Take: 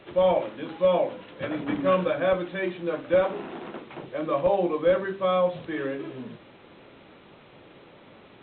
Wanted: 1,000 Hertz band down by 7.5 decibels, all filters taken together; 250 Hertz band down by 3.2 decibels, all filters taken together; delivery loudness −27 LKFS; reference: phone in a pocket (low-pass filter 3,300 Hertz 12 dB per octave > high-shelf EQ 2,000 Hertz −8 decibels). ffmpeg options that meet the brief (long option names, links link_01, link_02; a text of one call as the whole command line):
ffmpeg -i in.wav -af "lowpass=3300,equalizer=frequency=250:width_type=o:gain=-4,equalizer=frequency=1000:width_type=o:gain=-8,highshelf=frequency=2000:gain=-8,volume=2.5dB" out.wav